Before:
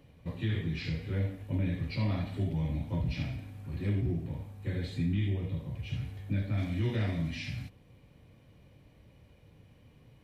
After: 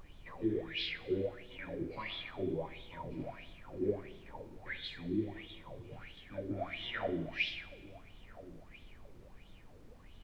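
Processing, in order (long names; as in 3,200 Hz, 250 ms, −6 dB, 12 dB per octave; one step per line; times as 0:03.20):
LFO wah 1.5 Hz 340–3,500 Hz, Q 8.4
background noise brown −68 dBFS
slap from a distant wall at 230 metres, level −16 dB
four-comb reverb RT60 1.4 s, combs from 27 ms, DRR 15 dB
level +14 dB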